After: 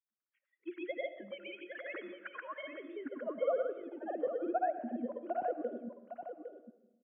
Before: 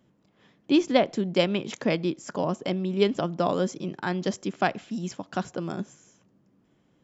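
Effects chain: sine-wave speech; LPF 2500 Hz 12 dB/oct; bell 900 Hz -8 dB 0.22 oct; harmonic-percussive split harmonic -7 dB; resonant low shelf 320 Hz +8 dB, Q 1.5; compressor 1.5:1, threshold -33 dBFS, peak gain reduction 7 dB; grains, pitch spread up and down by 0 st; spectral noise reduction 20 dB; band-pass sweep 1600 Hz -> 610 Hz, 2.59–3.29; echo 0.808 s -9 dB; on a send at -11.5 dB: reverb RT60 1.0 s, pre-delay 50 ms; on the sum: gain +6 dB

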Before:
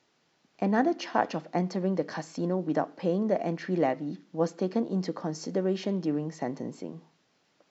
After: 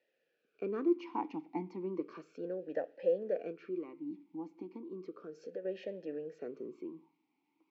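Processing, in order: 3.51–5.65 compressor 2.5:1, threshold -34 dBFS, peak gain reduction 9 dB; vowel sweep e-u 0.34 Hz; gain +2 dB

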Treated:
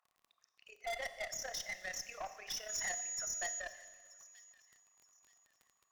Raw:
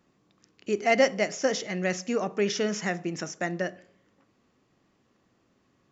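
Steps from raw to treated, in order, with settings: formant sharpening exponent 2; Chebyshev high-pass 700 Hz, order 5; crackle 30/s -50 dBFS; AM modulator 33 Hz, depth 55%; tube stage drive 39 dB, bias 0.35; 2.68–3.59 whine 6800 Hz -42 dBFS; thin delay 0.928 s, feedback 31%, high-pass 2100 Hz, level -19 dB; on a send at -11 dB: reverb RT60 1.6 s, pre-delay 29 ms; on the sum: gain +2.5 dB

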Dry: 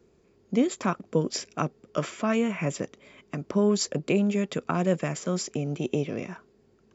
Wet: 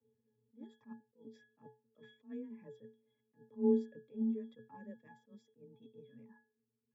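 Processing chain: reverb removal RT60 1.9 s; 5.77–6.19 bell 570 Hz -11 dB 2.3 oct; octave resonator G#, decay 0.29 s; frequency shift +21 Hz; attack slew limiter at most 260 dB/s; gain -3 dB

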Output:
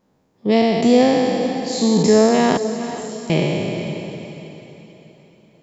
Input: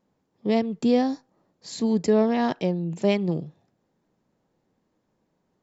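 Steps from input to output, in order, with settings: spectral trails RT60 2.58 s; 2.57–3.3 inverse Chebyshev high-pass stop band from 1100 Hz, stop band 80 dB; diffused feedback echo 0.458 s, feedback 42%, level -11 dB; gain +5.5 dB

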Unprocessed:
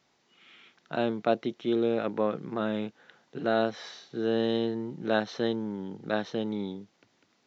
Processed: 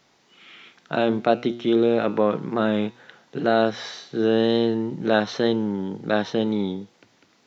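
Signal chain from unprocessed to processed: de-hum 120 Hz, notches 34; in parallel at -1.5 dB: limiter -20.5 dBFS, peak gain reduction 8.5 dB; on the sum: wow and flutter 24 cents; gain +3.5 dB

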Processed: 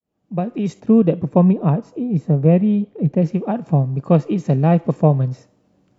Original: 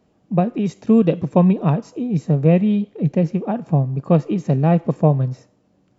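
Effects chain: opening faded in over 0.76 s; 0.8–3.22 high shelf 2300 Hz -12 dB; gain +1 dB

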